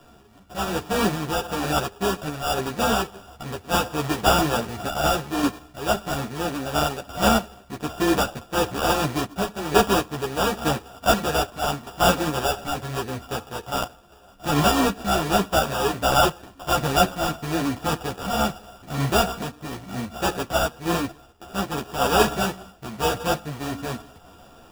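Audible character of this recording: a buzz of ramps at a fixed pitch in blocks of 32 samples; random-step tremolo; aliases and images of a low sample rate 2.1 kHz, jitter 0%; a shimmering, thickened sound

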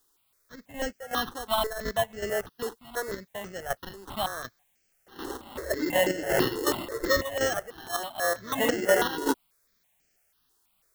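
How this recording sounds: aliases and images of a low sample rate 2.4 kHz, jitter 0%; chopped level 2.7 Hz, depth 65%, duty 50%; a quantiser's noise floor 12-bit, dither triangular; notches that jump at a steady rate 6.1 Hz 620–3700 Hz

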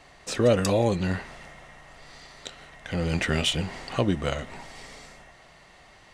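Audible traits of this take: noise floor -53 dBFS; spectral tilt -5.0 dB/octave

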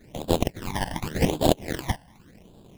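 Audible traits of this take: aliases and images of a low sample rate 1.3 kHz, jitter 20%; phasing stages 12, 0.87 Hz, lowest notch 400–2000 Hz

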